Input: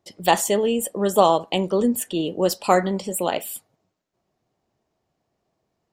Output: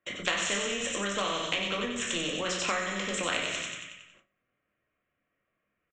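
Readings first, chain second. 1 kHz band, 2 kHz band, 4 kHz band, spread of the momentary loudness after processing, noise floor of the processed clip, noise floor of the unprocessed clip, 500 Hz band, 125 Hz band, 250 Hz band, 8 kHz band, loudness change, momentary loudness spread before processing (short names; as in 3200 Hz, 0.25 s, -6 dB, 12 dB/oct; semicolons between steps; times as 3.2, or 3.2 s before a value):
-13.0 dB, +2.0 dB, 0.0 dB, 6 LU, -82 dBFS, -76 dBFS, -14.0 dB, -11.5 dB, -13.0 dB, -5.0 dB, -8.5 dB, 8 LU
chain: Wiener smoothing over 9 samples; high shelf 3800 Hz +12 dB; fixed phaser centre 2000 Hz, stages 4; on a send: thin delay 92 ms, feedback 50%, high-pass 3000 Hz, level -3.5 dB; on the sum: shoebox room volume 390 m³, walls furnished, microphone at 2.2 m; gate with hold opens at -45 dBFS; downsampling 16000 Hz; three-band isolator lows -18 dB, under 590 Hz, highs -16 dB, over 3500 Hz; compressor 4:1, threshold -35 dBFS, peak gain reduction 14.5 dB; spectral compressor 2:1; gain +8 dB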